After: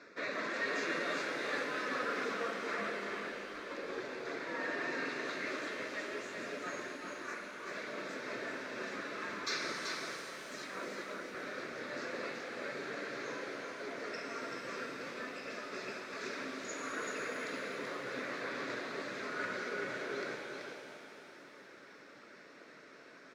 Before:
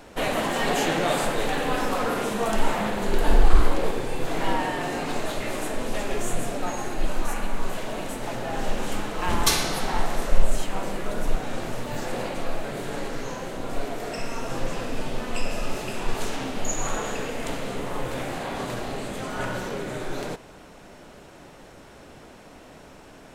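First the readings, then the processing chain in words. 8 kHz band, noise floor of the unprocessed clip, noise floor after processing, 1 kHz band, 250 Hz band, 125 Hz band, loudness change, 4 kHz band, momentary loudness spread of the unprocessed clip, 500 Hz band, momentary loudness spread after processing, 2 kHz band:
-16.5 dB, -47 dBFS, -56 dBFS, -13.0 dB, -13.5 dB, -24.5 dB, -11.0 dB, -11.5 dB, 23 LU, -11.5 dB, 11 LU, -5.0 dB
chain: reverb removal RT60 0.85 s; reverse; compressor, threshold -26 dBFS, peak gain reduction 18.5 dB; reverse; BPF 410–4100 Hz; fixed phaser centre 3000 Hz, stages 6; on a send: echo 0.382 s -5 dB; on the sum: shimmer reverb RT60 2.9 s, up +7 st, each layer -8 dB, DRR 2.5 dB; gain -2 dB

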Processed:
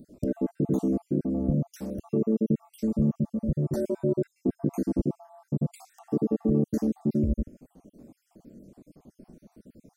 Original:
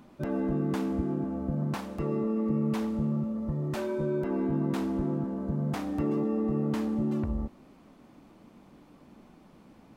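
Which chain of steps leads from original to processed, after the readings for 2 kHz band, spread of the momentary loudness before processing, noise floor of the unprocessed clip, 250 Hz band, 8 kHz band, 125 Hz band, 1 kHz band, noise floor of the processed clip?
under -10 dB, 4 LU, -56 dBFS, +2.0 dB, n/a, +2.5 dB, -8.5 dB, -76 dBFS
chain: random spectral dropouts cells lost 54%; band shelf 1900 Hz -15 dB 2.6 oct; gain +6 dB

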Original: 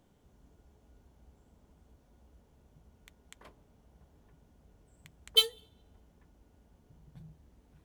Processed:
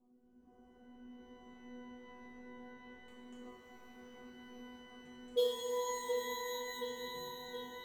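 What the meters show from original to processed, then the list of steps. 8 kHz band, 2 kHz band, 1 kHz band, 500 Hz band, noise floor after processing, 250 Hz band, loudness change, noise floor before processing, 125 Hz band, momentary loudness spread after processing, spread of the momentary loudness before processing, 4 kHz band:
-1.5 dB, +2.5 dB, +13.0 dB, +9.5 dB, -66 dBFS, +11.0 dB, -13.5 dB, -66 dBFS, n/a, 20 LU, 5 LU, -14.0 dB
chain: wow and flutter 120 cents; on a send: dark delay 0.723 s, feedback 61%, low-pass 3700 Hz, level -6 dB; on the sum: AGC gain up to 7 dB; resonator bank B3 fifth, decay 0.64 s; rotary speaker horn 1.2 Hz; ten-band EQ 125 Hz +3 dB, 250 Hz +12 dB, 500 Hz +6 dB, 1000 Hz +7 dB, 2000 Hz -10 dB, 4000 Hz -9 dB, 16000 Hz -12 dB; shimmer reverb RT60 4 s, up +12 st, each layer -2 dB, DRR 2 dB; gain +9.5 dB

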